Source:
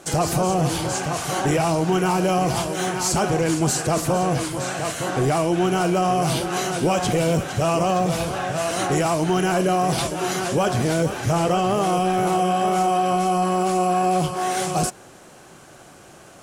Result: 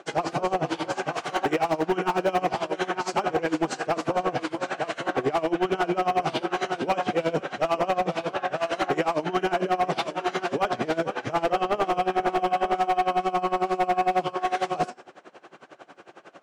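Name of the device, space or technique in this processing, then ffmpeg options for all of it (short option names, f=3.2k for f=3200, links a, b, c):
helicopter radio: -filter_complex "[0:a]highpass=310,lowpass=3k,lowpass=11k,bandreject=f=247.9:t=h:w=4,bandreject=f=495.8:t=h:w=4,bandreject=f=743.7:t=h:w=4,bandreject=f=991.6:t=h:w=4,bandreject=f=1.2395k:t=h:w=4,bandreject=f=1.4874k:t=h:w=4,bandreject=f=1.7353k:t=h:w=4,bandreject=f=1.9832k:t=h:w=4,bandreject=f=2.2311k:t=h:w=4,bandreject=f=2.479k:t=h:w=4,bandreject=f=2.7269k:t=h:w=4,bandreject=f=2.9748k:t=h:w=4,bandreject=f=3.2227k:t=h:w=4,bandreject=f=3.4706k:t=h:w=4,bandreject=f=3.7185k:t=h:w=4,bandreject=f=3.9664k:t=h:w=4,bandreject=f=4.2143k:t=h:w=4,bandreject=f=4.4622k:t=h:w=4,bandreject=f=4.7101k:t=h:w=4,bandreject=f=4.958k:t=h:w=4,bandreject=f=5.2059k:t=h:w=4,bandreject=f=5.4538k:t=h:w=4,bandreject=f=5.7017k:t=h:w=4,bandreject=f=5.9496k:t=h:w=4,bandreject=f=6.1975k:t=h:w=4,bandreject=f=6.4454k:t=h:w=4,bandreject=f=6.6933k:t=h:w=4,bandreject=f=6.9412k:t=h:w=4,bandreject=f=7.1891k:t=h:w=4,bandreject=f=7.437k:t=h:w=4,bandreject=f=7.6849k:t=h:w=4,bandreject=f=7.9328k:t=h:w=4,bandreject=f=8.1807k:t=h:w=4,bandreject=f=8.4286k:t=h:w=4,bandreject=f=8.6765k:t=h:w=4,bandreject=f=8.9244k:t=h:w=4,aeval=exprs='val(0)*pow(10,-21*(0.5-0.5*cos(2*PI*11*n/s))/20)':c=same,asoftclip=type=hard:threshold=-21.5dB,asettb=1/sr,asplit=3[a][b][c];[a]atrim=end=0.784[d];[b]atrim=start=0.78:end=2.46,asetpts=PTS-STARTPTS,afade=t=in:d=0.004:c=qsin,afade=t=out:st=1.676:d=0.004:c=qsin,highshelf=f=12k:g=10[e];[c]atrim=start=2.456[f];[d][e]acrossfade=d=0.004:c1=hsin:c2=qsin[g];[g][f]acrossfade=d=0.004:c1=qsin:c2=hsin,volume=4.5dB"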